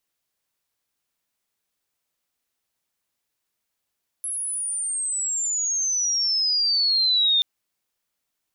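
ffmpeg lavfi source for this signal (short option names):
-f lavfi -i "aevalsrc='pow(10,(-26+10*t/3.18)/20)*sin(2*PI*11000*3.18/log(3600/11000)*(exp(log(3600/11000)*t/3.18)-1))':d=3.18:s=44100"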